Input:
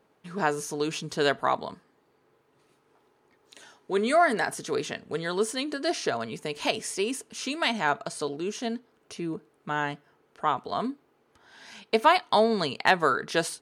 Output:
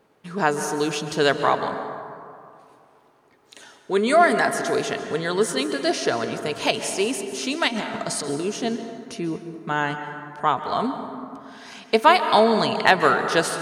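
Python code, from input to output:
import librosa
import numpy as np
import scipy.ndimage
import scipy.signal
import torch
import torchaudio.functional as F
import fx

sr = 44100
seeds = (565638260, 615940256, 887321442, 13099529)

y = fx.over_compress(x, sr, threshold_db=-35.0, ratio=-1.0, at=(7.67, 8.43), fade=0.02)
y = fx.rev_plate(y, sr, seeds[0], rt60_s=2.4, hf_ratio=0.4, predelay_ms=120, drr_db=7.5)
y = y * librosa.db_to_amplitude(5.0)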